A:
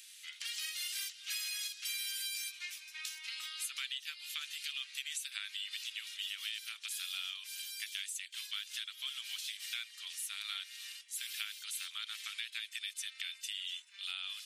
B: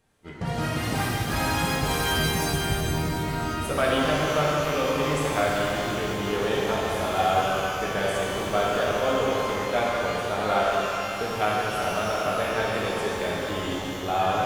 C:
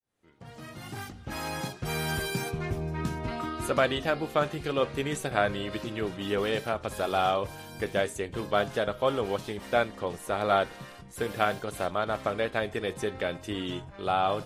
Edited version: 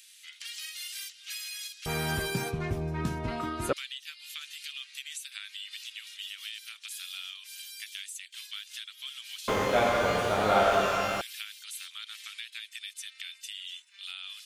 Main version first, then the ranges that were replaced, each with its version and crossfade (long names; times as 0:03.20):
A
0:01.86–0:03.73: punch in from C
0:09.48–0:11.21: punch in from B